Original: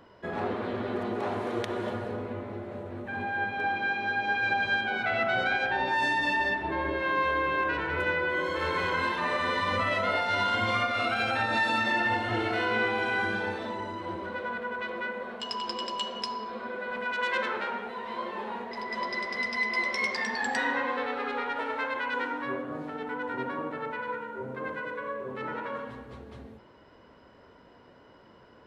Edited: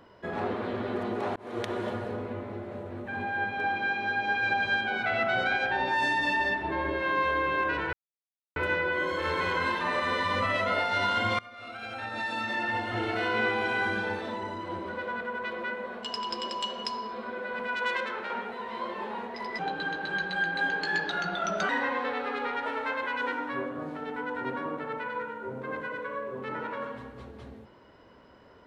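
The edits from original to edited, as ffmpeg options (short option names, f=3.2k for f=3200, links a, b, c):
-filter_complex "[0:a]asplit=8[a][b][c][d][e][f][g][h];[a]atrim=end=1.36,asetpts=PTS-STARTPTS,afade=t=out:st=1.356:d=0.004:c=hsin[i];[b]atrim=start=1.36:end=7.93,asetpts=PTS-STARTPTS,afade=t=in:d=0.29,afade=t=out:st=6.566:d=0.004:c=hsin,apad=pad_dur=0.63[j];[c]atrim=start=7.93:end=10.76,asetpts=PTS-STARTPTS,afade=t=in:d=0.004:c=hsin,afade=t=out:st=2.826:d=0.004:c=hsin:silence=0.0668344[k];[d]atrim=start=10.76:end=17.342,asetpts=PTS-STARTPTS,afade=t=in:d=2.01:silence=0.0668344[l];[e]atrim=start=17.338:end=17.672,asetpts=PTS-STARTPTS,volume=-3.5dB[m];[f]atrim=start=17.668:end=18.964[n];[g]atrim=start=18.96:end=20.62,asetpts=PTS-STARTPTS,asetrate=34839,aresample=44100[o];[h]atrim=start=20.616[p];[i][j][k][l]concat=n=4:v=0:a=1[q];[q][m]acrossfade=d=0.004:c1=hsin:c2=hsin[r];[r][n]acrossfade=d=0.004:c1=hsin:c2=hsin[s];[s][o]acrossfade=d=0.004:c1=hsin:c2=hsin[t];[t][p]acrossfade=d=0.004:c1=hsin:c2=hsin"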